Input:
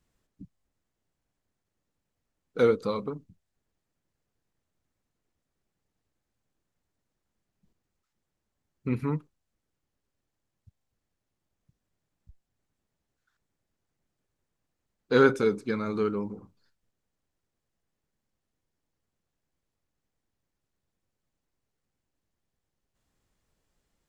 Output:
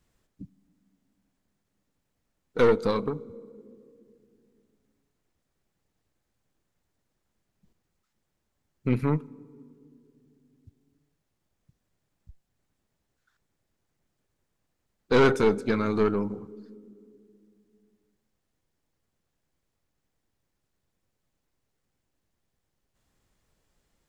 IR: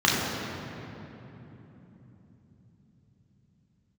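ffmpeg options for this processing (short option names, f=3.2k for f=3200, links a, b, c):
-filter_complex "[0:a]asplit=2[a][b];[1:a]atrim=start_sample=2205,asetrate=83790,aresample=44100[c];[b][c]afir=irnorm=-1:irlink=0,volume=-36.5dB[d];[a][d]amix=inputs=2:normalize=0,aeval=exprs='(tanh(10*val(0)+0.5)-tanh(0.5))/10':c=same,volume=6dB"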